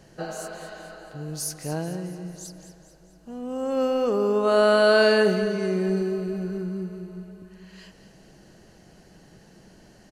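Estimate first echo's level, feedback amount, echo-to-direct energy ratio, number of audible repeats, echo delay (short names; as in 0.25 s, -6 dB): -12.0 dB, 50%, -11.0 dB, 4, 0.219 s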